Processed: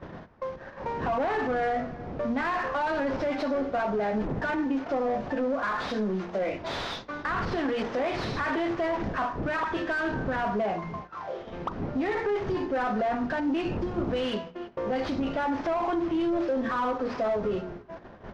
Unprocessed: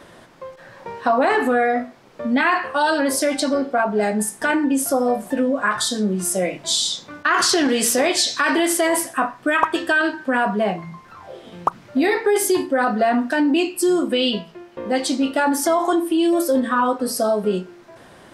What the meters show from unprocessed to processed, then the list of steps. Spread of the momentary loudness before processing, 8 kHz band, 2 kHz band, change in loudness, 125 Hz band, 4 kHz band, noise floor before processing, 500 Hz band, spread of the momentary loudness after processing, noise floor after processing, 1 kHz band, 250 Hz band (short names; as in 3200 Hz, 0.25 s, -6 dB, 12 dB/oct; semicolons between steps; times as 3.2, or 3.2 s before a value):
9 LU, under -30 dB, -10.5 dB, -10.0 dB, -1.0 dB, -16.5 dB, -47 dBFS, -8.0 dB, 8 LU, -45 dBFS, -8.0 dB, -9.0 dB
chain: CVSD 32 kbps; wind noise 180 Hz -30 dBFS; bell 4600 Hz -3.5 dB 1.6 oct; limiter -16.5 dBFS, peak gain reduction 11 dB; on a send: echo 0.335 s -23.5 dB; on the sum: overdrive pedal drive 15 dB, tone 1100 Hz, clips at -15.5 dBFS; in parallel at -0.5 dB: compressor, threshold -33 dBFS, peak gain reduction 12 dB; on the sum: gate -32 dBFS, range -13 dB; notches 60/120/180/240/300/360 Hz; mismatched tape noise reduction decoder only; gain -6 dB